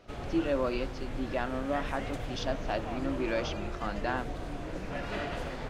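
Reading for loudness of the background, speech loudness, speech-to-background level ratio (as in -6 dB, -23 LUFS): -38.5 LUFS, -34.5 LUFS, 4.0 dB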